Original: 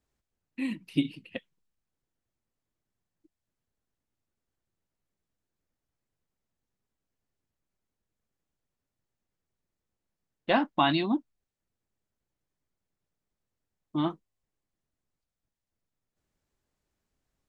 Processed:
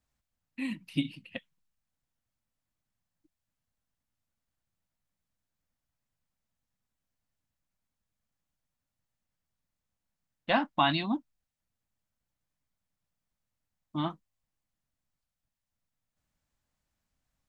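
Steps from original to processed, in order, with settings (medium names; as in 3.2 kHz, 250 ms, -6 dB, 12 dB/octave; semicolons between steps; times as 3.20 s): peaking EQ 390 Hz -12 dB 0.63 oct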